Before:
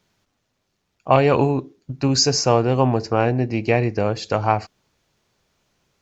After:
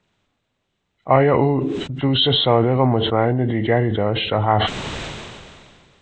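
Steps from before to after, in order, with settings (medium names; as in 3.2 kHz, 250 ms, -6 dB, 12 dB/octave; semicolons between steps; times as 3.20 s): knee-point frequency compression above 1.3 kHz 1.5:1; decay stretcher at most 28 dB/s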